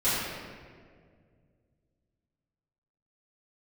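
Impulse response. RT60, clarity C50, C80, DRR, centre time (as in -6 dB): 2.0 s, -2.5 dB, 0.0 dB, -15.5 dB, 121 ms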